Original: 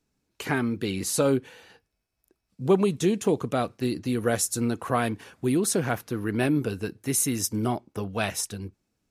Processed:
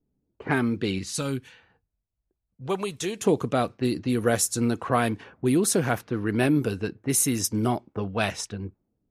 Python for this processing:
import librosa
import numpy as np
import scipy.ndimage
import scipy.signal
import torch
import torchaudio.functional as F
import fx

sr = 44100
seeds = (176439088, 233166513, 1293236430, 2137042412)

y = fx.env_lowpass(x, sr, base_hz=470.0, full_db=-22.5)
y = fx.peak_eq(y, sr, hz=fx.line((0.98, 650.0), (3.19, 190.0)), db=-13.5, octaves=2.3, at=(0.98, 3.19), fade=0.02)
y = F.gain(torch.from_numpy(y), 2.0).numpy()